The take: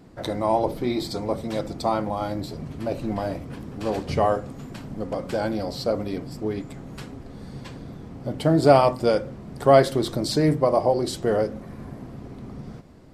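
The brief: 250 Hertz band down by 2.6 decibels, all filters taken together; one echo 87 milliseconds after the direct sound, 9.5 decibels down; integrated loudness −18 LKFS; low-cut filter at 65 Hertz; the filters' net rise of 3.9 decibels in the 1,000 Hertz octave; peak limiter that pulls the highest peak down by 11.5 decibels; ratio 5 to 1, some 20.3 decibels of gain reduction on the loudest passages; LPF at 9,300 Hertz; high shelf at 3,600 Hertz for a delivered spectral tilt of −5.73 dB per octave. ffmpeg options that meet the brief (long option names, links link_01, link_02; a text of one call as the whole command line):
ffmpeg -i in.wav -af "highpass=65,lowpass=9300,equalizer=frequency=250:width_type=o:gain=-4,equalizer=frequency=1000:width_type=o:gain=6.5,highshelf=frequency=3600:gain=-8,acompressor=threshold=-32dB:ratio=5,alimiter=level_in=5.5dB:limit=-24dB:level=0:latency=1,volume=-5.5dB,aecho=1:1:87:0.335,volume=21.5dB" out.wav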